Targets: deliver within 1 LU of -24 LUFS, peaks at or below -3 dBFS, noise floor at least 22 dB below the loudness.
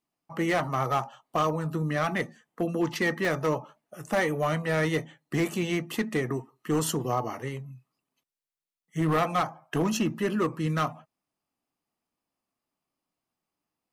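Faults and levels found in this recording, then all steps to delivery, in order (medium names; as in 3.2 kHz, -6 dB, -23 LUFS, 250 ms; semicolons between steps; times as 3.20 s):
clipped samples 1.4%; clipping level -19.5 dBFS; dropouts 1; longest dropout 1.3 ms; loudness -28.5 LUFS; peak level -19.5 dBFS; loudness target -24.0 LUFS
-> clip repair -19.5 dBFS; interpolate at 3.25 s, 1.3 ms; trim +4.5 dB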